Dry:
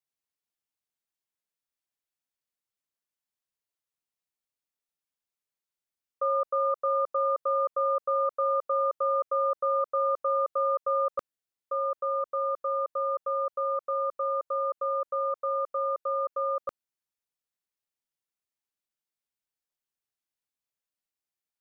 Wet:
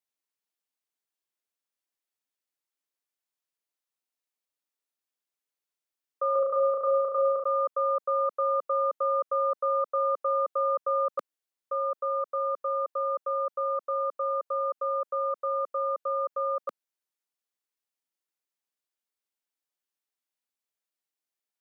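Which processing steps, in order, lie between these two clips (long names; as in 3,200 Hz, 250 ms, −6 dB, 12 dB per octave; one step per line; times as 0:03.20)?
high-pass filter 230 Hz 24 dB per octave
0:06.32–0:07.44: flutter between parallel walls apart 6 metres, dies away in 0.82 s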